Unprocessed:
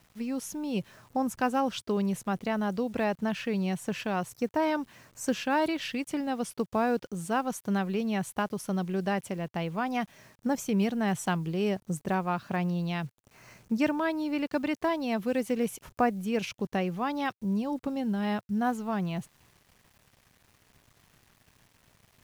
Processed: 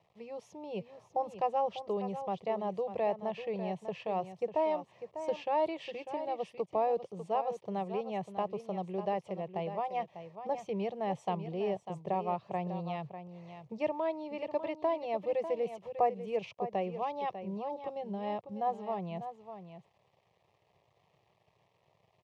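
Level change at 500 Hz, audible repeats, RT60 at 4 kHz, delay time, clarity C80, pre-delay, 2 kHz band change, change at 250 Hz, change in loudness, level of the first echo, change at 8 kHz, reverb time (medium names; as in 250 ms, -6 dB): -1.0 dB, 1, no reverb, 597 ms, no reverb, no reverb, -13.5 dB, -12.5 dB, -5.0 dB, -10.5 dB, under -20 dB, no reverb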